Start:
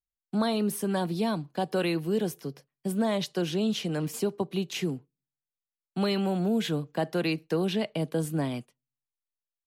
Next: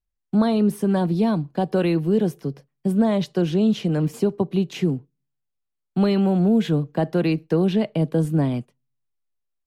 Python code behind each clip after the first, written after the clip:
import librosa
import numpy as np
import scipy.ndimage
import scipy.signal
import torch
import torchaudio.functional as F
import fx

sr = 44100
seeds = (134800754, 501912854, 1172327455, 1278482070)

y = fx.tilt_eq(x, sr, slope=-2.5)
y = y * librosa.db_to_amplitude(3.5)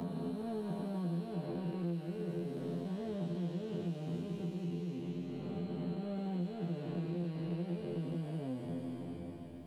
y = fx.spec_blur(x, sr, span_ms=1050.0)
y = fx.comb_fb(y, sr, f0_hz=86.0, decay_s=0.24, harmonics='all', damping=0.0, mix_pct=100)
y = fx.band_squash(y, sr, depth_pct=100)
y = y * librosa.db_to_amplitude(-5.0)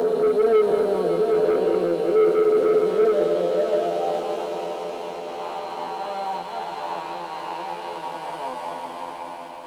y = fx.filter_sweep_highpass(x, sr, from_hz=450.0, to_hz=910.0, start_s=3.01, end_s=4.58, q=7.7)
y = fx.leveller(y, sr, passes=2)
y = fx.echo_heads(y, sr, ms=186, heads='first and third', feedback_pct=75, wet_db=-11.5)
y = y * librosa.db_to_amplitude(7.5)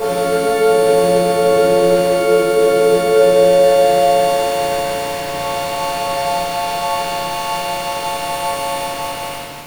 y = fx.freq_snap(x, sr, grid_st=4)
y = np.where(np.abs(y) >= 10.0 ** (-27.5 / 20.0), y, 0.0)
y = fx.room_shoebox(y, sr, seeds[0], volume_m3=570.0, walls='mixed', distance_m=5.1)
y = y * librosa.db_to_amplitude(-4.0)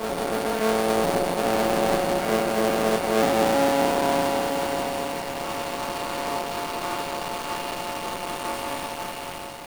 y = fx.cycle_switch(x, sr, every=2, mode='muted')
y = y + 10.0 ** (-10.0 / 20.0) * np.pad(y, (int(951 * sr / 1000.0), 0))[:len(y)]
y = y * librosa.db_to_amplitude(-7.5)